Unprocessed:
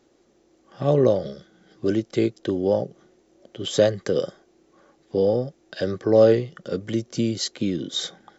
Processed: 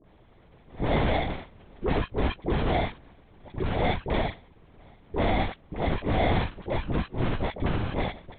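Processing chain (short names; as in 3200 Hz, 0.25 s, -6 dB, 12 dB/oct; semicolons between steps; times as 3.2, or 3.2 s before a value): in parallel at -1 dB: compressor, threshold -29 dBFS, peak gain reduction 17.5 dB; on the sum: sample-rate reducer 1400 Hz, jitter 0%; hard clip -21.5 dBFS, distortion -5 dB; dispersion highs, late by 55 ms, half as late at 870 Hz; LPC vocoder at 8 kHz whisper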